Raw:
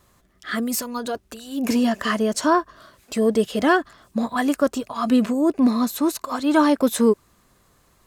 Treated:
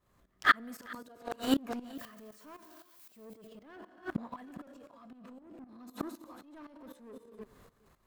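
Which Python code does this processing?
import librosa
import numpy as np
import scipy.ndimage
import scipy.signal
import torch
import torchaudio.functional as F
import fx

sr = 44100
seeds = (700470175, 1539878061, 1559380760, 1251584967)

y = fx.crossing_spikes(x, sr, level_db=-15.0, at=(1.95, 3.25))
y = fx.rev_gated(y, sr, seeds[0], gate_ms=340, shape='flat', drr_db=9.0)
y = fx.leveller(y, sr, passes=3)
y = fx.peak_eq(y, sr, hz=8300.0, db=-8.5, octaves=2.3)
y = fx.gate_flip(y, sr, shuts_db=-10.0, range_db=-38)
y = fx.dynamic_eq(y, sr, hz=1200.0, q=0.95, threshold_db=-47.0, ratio=4.0, max_db=6)
y = y + 10.0 ** (-20.5 / 20.0) * np.pad(y, (int(410 * sr / 1000.0), 0))[:len(y)]
y = fx.transient(y, sr, attack_db=-2, sustain_db=10)
y = fx.tremolo_shape(y, sr, shape='saw_up', hz=3.9, depth_pct=80)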